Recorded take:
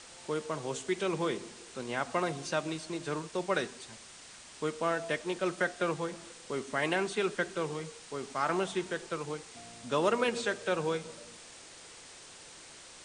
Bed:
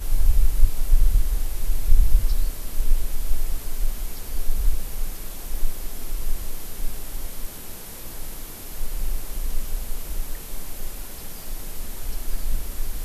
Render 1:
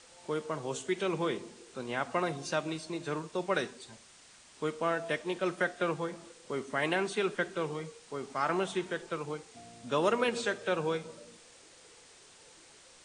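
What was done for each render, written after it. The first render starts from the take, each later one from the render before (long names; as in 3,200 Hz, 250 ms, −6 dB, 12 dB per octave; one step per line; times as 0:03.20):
noise reduction from a noise print 6 dB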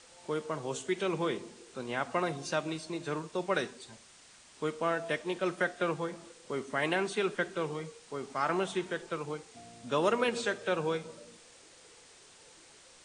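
no processing that can be heard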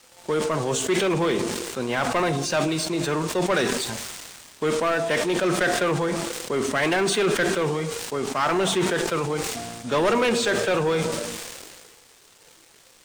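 leveller curve on the samples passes 3
level that may fall only so fast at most 30 dB per second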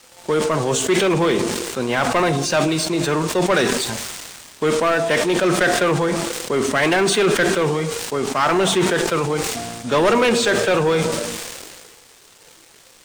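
level +5 dB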